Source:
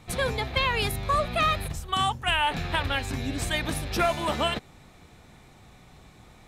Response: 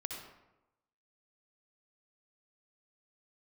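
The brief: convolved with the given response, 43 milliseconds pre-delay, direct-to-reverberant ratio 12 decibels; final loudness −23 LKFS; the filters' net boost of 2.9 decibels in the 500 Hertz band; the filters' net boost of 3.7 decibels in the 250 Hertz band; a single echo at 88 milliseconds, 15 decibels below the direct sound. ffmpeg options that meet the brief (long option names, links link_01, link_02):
-filter_complex "[0:a]equalizer=frequency=250:width_type=o:gain=4,equalizer=frequency=500:width_type=o:gain=3,aecho=1:1:88:0.178,asplit=2[link_01][link_02];[1:a]atrim=start_sample=2205,adelay=43[link_03];[link_02][link_03]afir=irnorm=-1:irlink=0,volume=-12dB[link_04];[link_01][link_04]amix=inputs=2:normalize=0,volume=2dB"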